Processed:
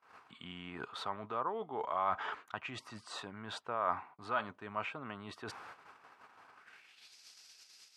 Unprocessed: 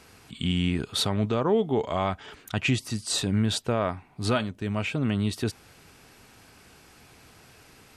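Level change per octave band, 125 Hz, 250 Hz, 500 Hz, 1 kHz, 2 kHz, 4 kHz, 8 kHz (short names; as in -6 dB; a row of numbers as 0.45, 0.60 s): -25.5, -21.5, -13.5, -3.0, -8.5, -16.5, -21.5 dB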